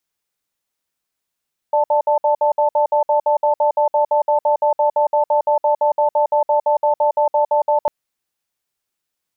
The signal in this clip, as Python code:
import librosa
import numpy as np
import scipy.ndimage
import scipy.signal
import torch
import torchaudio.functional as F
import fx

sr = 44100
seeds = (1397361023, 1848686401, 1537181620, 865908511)

y = fx.cadence(sr, length_s=6.15, low_hz=593.0, high_hz=881.0, on_s=0.11, off_s=0.06, level_db=-15.0)